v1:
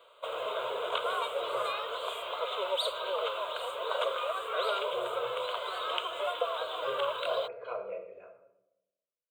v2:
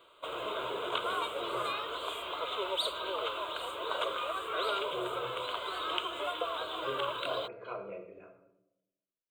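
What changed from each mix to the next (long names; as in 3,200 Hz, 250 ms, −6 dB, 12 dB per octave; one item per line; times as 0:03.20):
master: add low shelf with overshoot 400 Hz +7.5 dB, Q 3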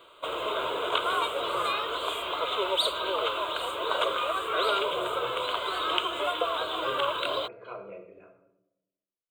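background +6.5 dB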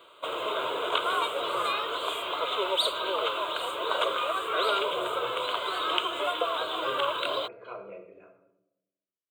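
master: add high-pass filter 140 Hz 6 dB per octave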